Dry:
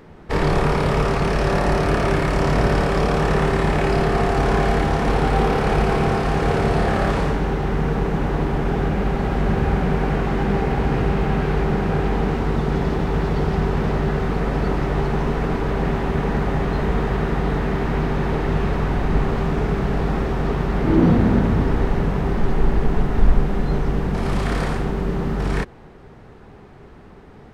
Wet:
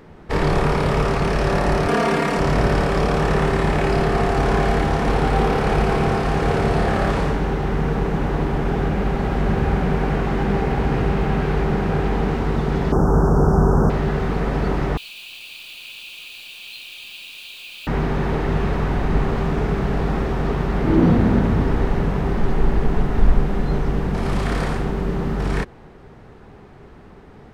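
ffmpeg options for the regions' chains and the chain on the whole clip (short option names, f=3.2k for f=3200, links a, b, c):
-filter_complex "[0:a]asettb=1/sr,asplit=3[a][b][c];[a]atrim=end=1.884[d];[b]atrim=start=1.88:end=2.39,asetpts=PTS-STARTPTS,afade=t=in:d=0.004:c=qsin,afade=t=out:st=0.506:d=0.004:c=qsin,highpass=150,aecho=1:1:4.3:0.83,atrim=end_sample=22491[e];[c]atrim=start=2.386[f];[d][e]acrossfade=d=0.004:c1=hsin:c2=qsin[g];[g][f]acrossfade=d=0.004:c1=qsin:c2=hsin,asettb=1/sr,asplit=3[h][i][j];[h]atrim=end=12.924[k];[i]atrim=start=12.92:end=13.9,asetpts=PTS-STARTPTS,afade=t=in:d=0.004:c=qsin,afade=t=out:st=0.976:d=0.004:c=qsin,acontrast=38,asuperstop=centerf=2900:order=12:qfactor=0.73[l];[j]atrim=start=13.896[m];[k][l]acrossfade=d=0.004:c1=hsin:c2=qsin[n];[n][m]acrossfade=d=0.004:c1=qsin:c2=hsin,asettb=1/sr,asplit=3[o][p][q];[o]atrim=end=14.974[r];[p]atrim=start=14.97:end=17.87,asetpts=PTS-STARTPTS,afade=t=in:d=0.004:c=qsin,afade=t=out:st=2.896:d=0.004:c=qsin,asuperpass=centerf=3400:order=20:qfactor=1.4,acrusher=bits=9:dc=4:mix=0:aa=0.000001,acontrast=78[s];[q]atrim=start=17.866[t];[r][s]acrossfade=d=0.004:c1=hsin:c2=qsin[u];[u][t]acrossfade=d=0.004:c1=qsin:c2=hsin"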